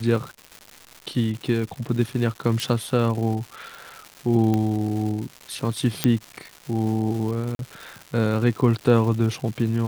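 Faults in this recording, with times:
crackle 340/s -31 dBFS
2.6 pop
4.54 pop -12 dBFS
6.04 pop -4 dBFS
7.55–7.59 gap 42 ms

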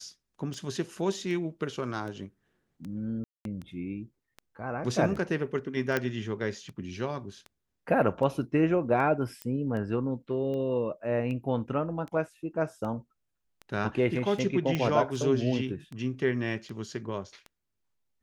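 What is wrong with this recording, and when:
tick 78 rpm -28 dBFS
3.24–3.45 gap 0.212 s
5.97 pop -13 dBFS
9.42 pop -20 dBFS
14.75 pop -16 dBFS

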